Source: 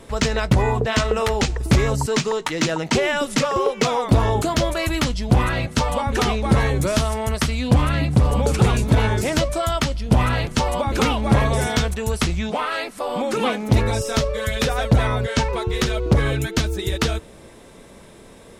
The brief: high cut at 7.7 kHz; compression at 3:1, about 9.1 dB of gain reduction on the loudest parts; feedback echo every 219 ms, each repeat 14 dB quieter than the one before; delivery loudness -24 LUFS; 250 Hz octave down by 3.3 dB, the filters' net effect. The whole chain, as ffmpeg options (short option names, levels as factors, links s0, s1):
-af "lowpass=7700,equalizer=f=250:t=o:g=-4.5,acompressor=threshold=0.0631:ratio=3,aecho=1:1:219|438:0.2|0.0399,volume=1.41"